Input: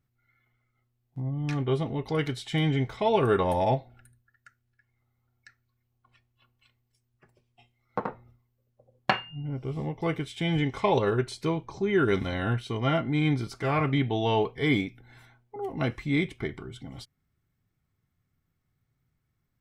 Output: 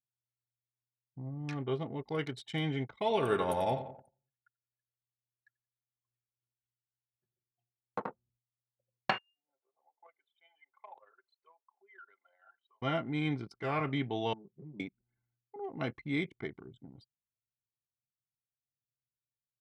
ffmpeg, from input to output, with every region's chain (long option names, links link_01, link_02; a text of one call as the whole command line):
ffmpeg -i in.wav -filter_complex "[0:a]asettb=1/sr,asplit=3[link_01][link_02][link_03];[link_01]atrim=end=2.954[link_04];[link_02]atrim=start=2.95:end=8.05,asetpts=PTS-STARTPTS,afade=type=in:duration=0.004:curve=qsin,afade=type=out:start_time=5.096:duration=0.004:curve=qsin,aemphasis=mode=production:type=cd,bandreject=frequency=5200:width=7.9,aecho=1:1:89|178|267|356|445|534:0.282|0.155|0.0853|0.0469|0.0258|0.0142,atrim=end_sample=224910[link_05];[link_03]atrim=start=8.046[link_06];[link_04][link_05]acrossfade=duration=0.004:curve1=hsin:curve2=qsin[link_07];[link_07][link_06]acrossfade=duration=0.004:curve1=qsin:curve2=hsin,asettb=1/sr,asplit=3[link_08][link_09][link_10];[link_08]atrim=end=9.184[link_11];[link_09]atrim=start=9.18:end=12.82,asetpts=PTS-STARTPTS,afade=type=in:duration=0.004:curve=qsin,afade=type=out:start_time=3.636:duration=0.004:curve=qsin,highpass=frequency=650:width=0.5412,highpass=frequency=650:width=1.3066,highshelf=frequency=2800:gain=-7,acompressor=threshold=-51dB:ratio=2:attack=3.2:release=140:knee=1:detection=peak[link_12];[link_10]atrim=start=12.816[link_13];[link_11][link_12]acrossfade=duration=0.004:curve1=hsin:curve2=qsin[link_14];[link_14][link_13]acrossfade=duration=0.004:curve1=qsin:curve2=hsin,asettb=1/sr,asplit=3[link_15][link_16][link_17];[link_15]atrim=end=14.334[link_18];[link_16]atrim=start=14.33:end=14.8,asetpts=PTS-STARTPTS,afade=type=in:duration=0.004:curve=qsin,afade=type=out:start_time=0.466:duration=0.004:curve=qsin,bandpass=frequency=170:width_type=q:width=1.4,acompressor=threshold=-38dB:ratio=20:attack=3.2:release=140:knee=1:detection=peak,aecho=1:1:5.6:0.92,atrim=end_sample=20727[link_19];[link_17]atrim=start=14.796[link_20];[link_18][link_19]acrossfade=duration=0.004:curve1=hsin:curve2=qsin[link_21];[link_21][link_20]acrossfade=duration=0.004:curve1=qsin:curve2=hsin,anlmdn=1,highpass=110,lowshelf=frequency=170:gain=-4.5,volume=-6dB" out.wav